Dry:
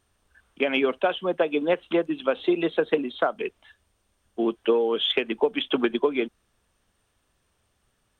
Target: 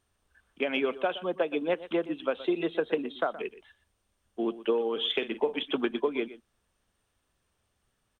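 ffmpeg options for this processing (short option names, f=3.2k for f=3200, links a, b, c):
-filter_complex "[0:a]asettb=1/sr,asplit=3[a][b][c];[a]atrim=end=4.934[d];[b]atrim=start=4.93:end=5.63,asetpts=PTS-STARTPTS,afade=t=in:d=0.004:c=qsin,afade=t=out:st=0.696:d=0.004:c=qsin,asplit=2[e][f];[f]adelay=47,volume=-12dB[g];[e][g]amix=inputs=2:normalize=0,atrim=end_sample=30870[h];[c]atrim=start=5.626[i];[d][h]acrossfade=d=0.004:c1=hsin:c2=qsin[j];[j][i]acrossfade=d=0.004:c1=qsin:c2=hsin,aecho=1:1:121:0.158,volume=-5.5dB"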